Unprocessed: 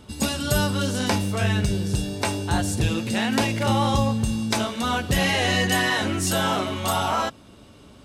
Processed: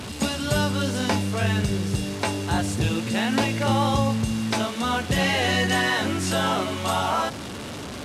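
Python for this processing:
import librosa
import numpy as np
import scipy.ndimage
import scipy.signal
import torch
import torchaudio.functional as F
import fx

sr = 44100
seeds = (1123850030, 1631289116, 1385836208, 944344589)

y = fx.delta_mod(x, sr, bps=64000, step_db=-27.5)
y = scipy.signal.sosfilt(scipy.signal.butter(2, 74.0, 'highpass', fs=sr, output='sos'), y)
y = fx.high_shelf(y, sr, hz=8000.0, db=-7.5)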